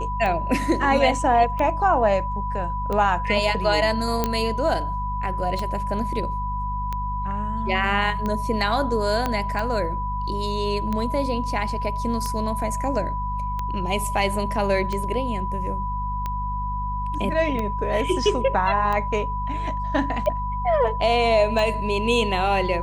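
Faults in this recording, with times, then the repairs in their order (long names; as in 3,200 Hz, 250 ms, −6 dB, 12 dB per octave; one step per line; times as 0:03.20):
mains hum 50 Hz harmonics 4 −29 dBFS
scratch tick 45 rpm −15 dBFS
whistle 990 Hz −27 dBFS
0:04.24: click −7 dBFS
0:09.26: click −10 dBFS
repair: click removal
hum removal 50 Hz, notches 4
notch filter 990 Hz, Q 30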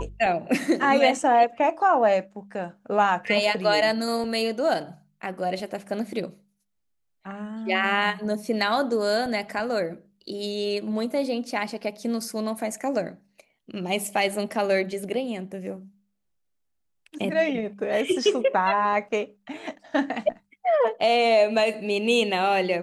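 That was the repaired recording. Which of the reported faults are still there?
0:04.24: click
0:09.26: click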